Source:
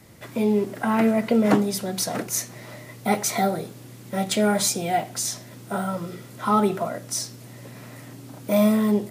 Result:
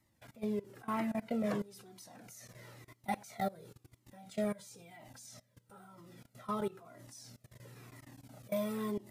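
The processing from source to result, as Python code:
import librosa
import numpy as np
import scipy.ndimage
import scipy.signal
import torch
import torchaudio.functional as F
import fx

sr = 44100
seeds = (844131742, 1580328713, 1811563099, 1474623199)

y = fx.notch_comb(x, sr, f0_hz=360.0, at=(4.44, 5.8))
y = fx.level_steps(y, sr, step_db=21)
y = fx.comb_cascade(y, sr, direction='falling', hz=1.0)
y = F.gain(torch.from_numpy(y), -7.0).numpy()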